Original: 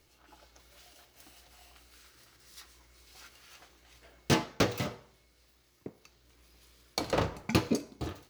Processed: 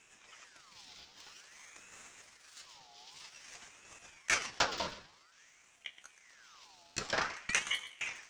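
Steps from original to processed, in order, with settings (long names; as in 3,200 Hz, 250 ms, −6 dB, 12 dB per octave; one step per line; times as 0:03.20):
pitch shifter gated in a rhythm +7 semitones, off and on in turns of 443 ms
high shelf with overshoot 2,800 Hz +12.5 dB, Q 1.5
in parallel at +1 dB: downward compressor, threshold −40 dBFS, peak gain reduction 23 dB
on the sum: high-frequency loss of the air 190 metres
on a send: feedback echo with a high-pass in the loop 122 ms, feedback 20%, level −12 dB
on the sum: ring modulator whose carrier an LFO sweeps 1,700 Hz, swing 55%, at 0.51 Hz
level −3 dB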